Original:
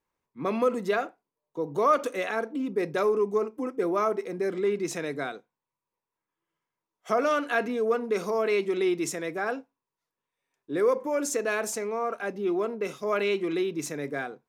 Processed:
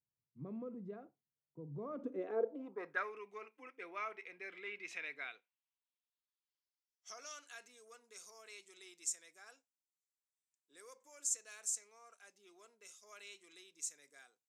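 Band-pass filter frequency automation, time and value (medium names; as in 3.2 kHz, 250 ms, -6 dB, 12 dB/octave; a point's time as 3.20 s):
band-pass filter, Q 3.7
1.73 s 120 Hz
2.61 s 660 Hz
3.14 s 2.4 kHz
5.22 s 2.4 kHz
7.61 s 7.6 kHz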